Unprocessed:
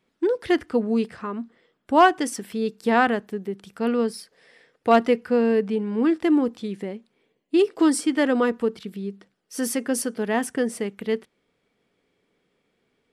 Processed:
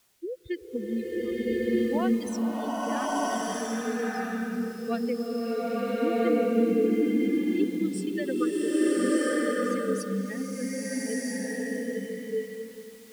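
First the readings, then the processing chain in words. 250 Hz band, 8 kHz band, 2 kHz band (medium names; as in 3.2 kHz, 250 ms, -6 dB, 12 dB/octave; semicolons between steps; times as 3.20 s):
-2.5 dB, -4.0 dB, -6.0 dB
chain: expander on every frequency bin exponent 3; level-controlled noise filter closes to 2.6 kHz, open at -22.5 dBFS; compression, threshold -27 dBFS, peak gain reduction 13.5 dB; added noise white -62 dBFS; rotary cabinet horn 0.75 Hz, later 7.5 Hz, at 3.27 s; swelling reverb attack 1270 ms, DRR -9.5 dB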